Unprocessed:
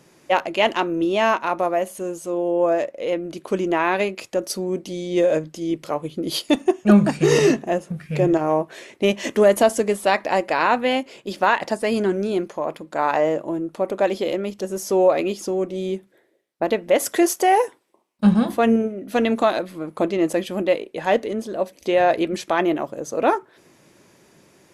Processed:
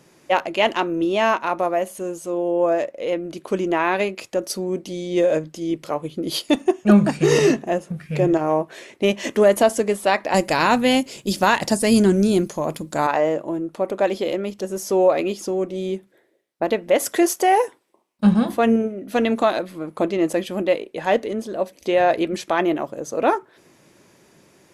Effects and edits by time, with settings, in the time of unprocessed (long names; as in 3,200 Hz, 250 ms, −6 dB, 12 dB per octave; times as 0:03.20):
0:10.34–0:13.07: bass and treble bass +14 dB, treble +15 dB